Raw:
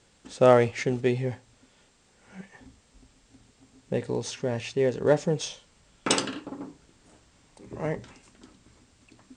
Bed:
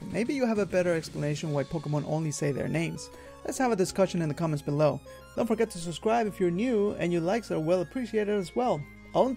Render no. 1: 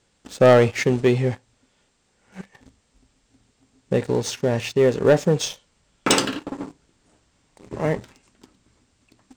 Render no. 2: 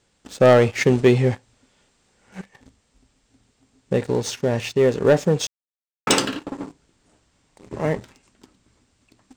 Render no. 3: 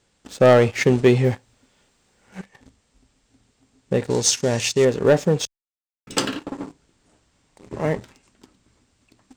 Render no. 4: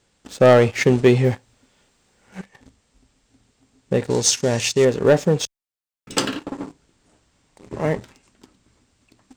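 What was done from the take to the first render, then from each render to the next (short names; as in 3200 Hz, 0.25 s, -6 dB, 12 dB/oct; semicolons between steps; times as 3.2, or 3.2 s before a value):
sample leveller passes 2
0.81–2.4 gain +3 dB; 5.47–6.07 mute
1.24–2.39 companded quantiser 8-bit; 4.1–4.85 bell 6800 Hz +13.5 dB 1.7 oct; 5.45–6.17 passive tone stack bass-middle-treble 10-0-1
gain +1 dB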